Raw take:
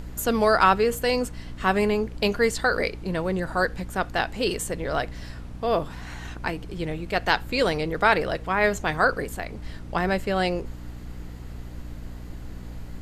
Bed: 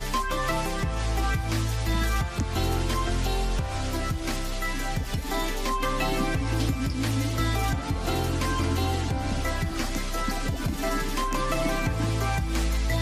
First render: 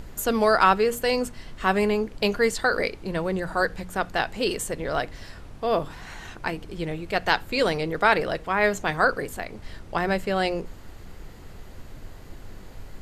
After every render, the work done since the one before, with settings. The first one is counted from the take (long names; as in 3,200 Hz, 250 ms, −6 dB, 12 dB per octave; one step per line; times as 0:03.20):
mains-hum notches 60/120/180/240/300 Hz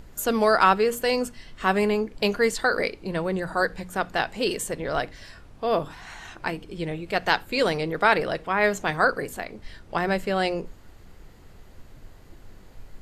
noise reduction from a noise print 6 dB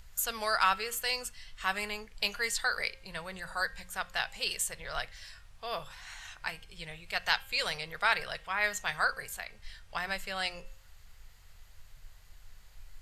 guitar amp tone stack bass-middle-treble 10-0-10
hum removal 266.6 Hz, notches 13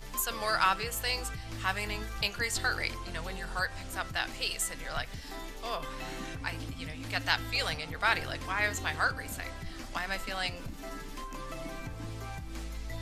mix in bed −14.5 dB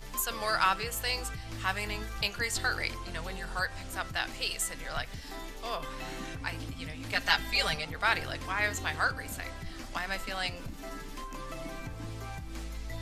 0:07.12–0:07.85: comb filter 5 ms, depth 90%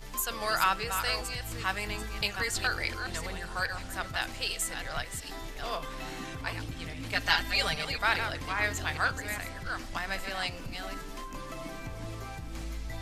delay that plays each chunk backwards 408 ms, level −7.5 dB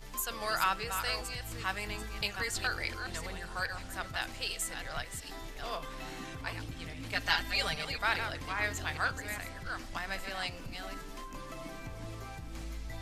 level −3.5 dB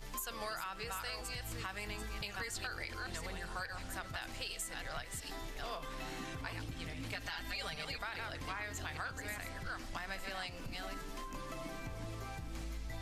brickwall limiter −23 dBFS, peak gain reduction 11 dB
downward compressor, threshold −38 dBFS, peak gain reduction 9 dB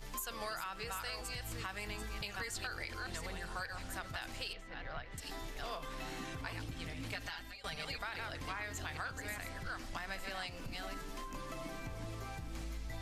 0:04.53–0:05.18: high-frequency loss of the air 280 metres
0:07.22–0:07.64: fade out, to −18 dB